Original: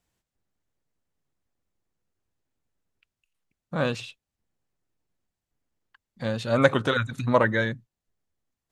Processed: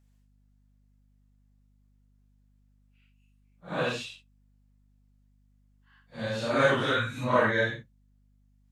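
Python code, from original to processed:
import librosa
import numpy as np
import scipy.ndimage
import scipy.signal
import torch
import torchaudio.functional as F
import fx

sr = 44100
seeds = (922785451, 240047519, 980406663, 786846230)

y = fx.phase_scramble(x, sr, seeds[0], window_ms=200)
y = fx.low_shelf(y, sr, hz=380.0, db=-6.5)
y = fx.add_hum(y, sr, base_hz=50, snr_db=31)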